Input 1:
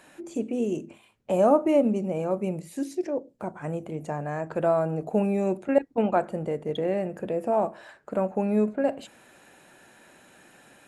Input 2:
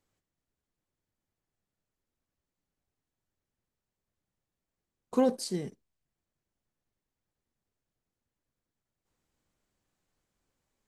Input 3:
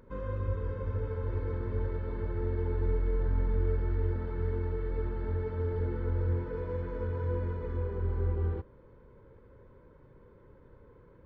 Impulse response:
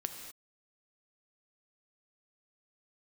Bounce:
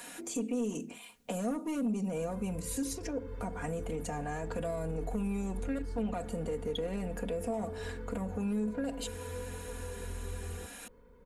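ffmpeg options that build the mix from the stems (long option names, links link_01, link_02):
-filter_complex "[0:a]acrossover=split=390|3000[link_01][link_02][link_03];[link_02]acompressor=threshold=-34dB:ratio=4[link_04];[link_01][link_04][link_03]amix=inputs=3:normalize=0,asoftclip=type=tanh:threshold=-20.5dB,volume=2.5dB[link_05];[1:a]acompressor=threshold=-44dB:ratio=2,adelay=450,volume=-13.5dB[link_06];[2:a]adelay=2050,volume=-5.5dB[link_07];[link_05][link_07]amix=inputs=2:normalize=0,highshelf=frequency=3600:gain=12,alimiter=limit=-23dB:level=0:latency=1:release=30,volume=0dB[link_08];[link_06][link_08]amix=inputs=2:normalize=0,aecho=1:1:4.2:0.78,acompressor=threshold=-44dB:ratio=1.5"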